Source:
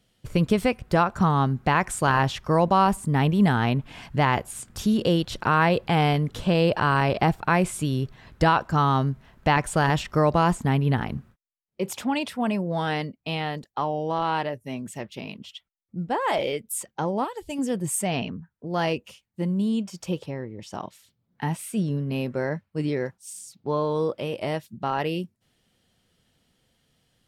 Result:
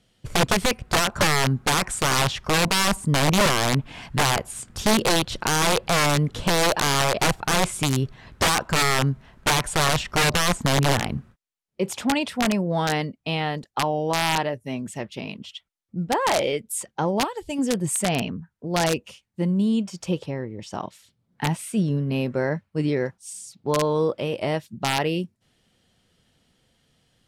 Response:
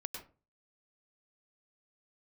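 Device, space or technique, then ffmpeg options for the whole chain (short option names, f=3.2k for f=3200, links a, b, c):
overflowing digital effects unit: -af "aeval=exprs='(mod(6.31*val(0)+1,2)-1)/6.31':c=same,lowpass=11k,volume=3dB"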